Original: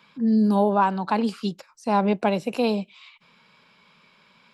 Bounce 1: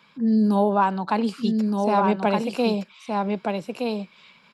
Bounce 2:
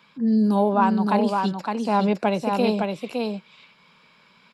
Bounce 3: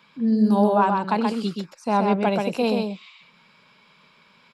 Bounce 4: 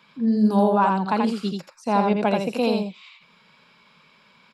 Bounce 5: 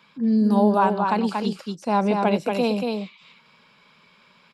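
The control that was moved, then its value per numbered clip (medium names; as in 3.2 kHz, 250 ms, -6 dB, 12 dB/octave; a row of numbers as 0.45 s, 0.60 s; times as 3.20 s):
delay, time: 1219 ms, 562 ms, 129 ms, 84 ms, 234 ms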